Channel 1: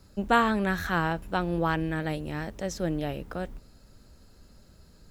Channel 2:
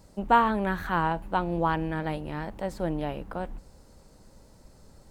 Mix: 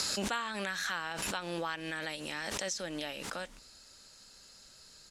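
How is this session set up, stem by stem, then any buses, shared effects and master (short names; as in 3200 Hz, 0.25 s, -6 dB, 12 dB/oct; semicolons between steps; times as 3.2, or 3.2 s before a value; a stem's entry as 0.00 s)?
-1.0 dB, 0.00 s, no send, weighting filter ITU-R 468; backwards sustainer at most 28 dB/s
-17.0 dB, 3.4 ms, no send, dry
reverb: off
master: compressor 3:1, threshold -35 dBFS, peak gain reduction 14.5 dB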